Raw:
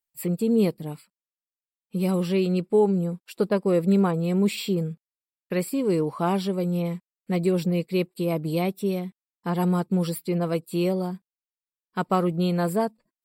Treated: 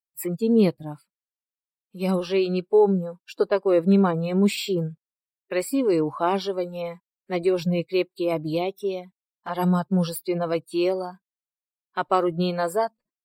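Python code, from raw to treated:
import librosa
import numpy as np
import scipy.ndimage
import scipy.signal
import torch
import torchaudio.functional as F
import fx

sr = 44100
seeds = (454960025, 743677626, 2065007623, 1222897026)

y = fx.noise_reduce_blind(x, sr, reduce_db=16)
y = fx.env_flanger(y, sr, rest_ms=5.4, full_db=-27.0, at=(8.56, 9.49), fade=0.02)
y = F.gain(torch.from_numpy(y), 3.0).numpy()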